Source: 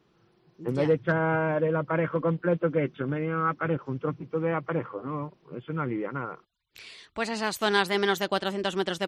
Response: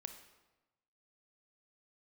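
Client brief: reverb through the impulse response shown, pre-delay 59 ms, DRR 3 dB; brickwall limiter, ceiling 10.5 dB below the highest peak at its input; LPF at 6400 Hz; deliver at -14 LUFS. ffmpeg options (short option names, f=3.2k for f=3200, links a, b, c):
-filter_complex "[0:a]lowpass=6.4k,alimiter=limit=-20.5dB:level=0:latency=1,asplit=2[a][b];[1:a]atrim=start_sample=2205,adelay=59[c];[b][c]afir=irnorm=-1:irlink=0,volume=1dB[d];[a][d]amix=inputs=2:normalize=0,volume=16dB"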